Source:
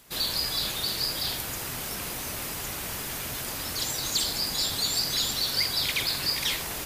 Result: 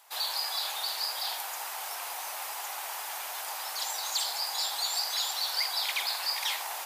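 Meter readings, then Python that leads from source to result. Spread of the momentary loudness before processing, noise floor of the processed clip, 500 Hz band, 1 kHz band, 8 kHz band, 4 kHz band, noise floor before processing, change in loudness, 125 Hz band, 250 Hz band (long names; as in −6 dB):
8 LU, −38 dBFS, −6.5 dB, +3.5 dB, −4.0 dB, −4.0 dB, −35 dBFS, −3.5 dB, below −40 dB, below −25 dB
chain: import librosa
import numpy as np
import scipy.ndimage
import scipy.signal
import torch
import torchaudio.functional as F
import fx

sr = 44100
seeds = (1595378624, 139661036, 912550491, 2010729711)

y = fx.ladder_highpass(x, sr, hz=720.0, resonance_pct=60)
y = y * librosa.db_to_amplitude(6.5)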